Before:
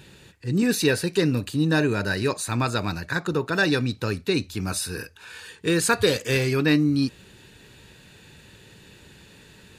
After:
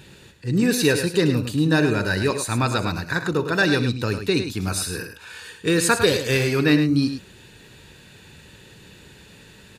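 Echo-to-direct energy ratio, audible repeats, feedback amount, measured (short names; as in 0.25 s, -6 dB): -8.0 dB, 2, no steady repeat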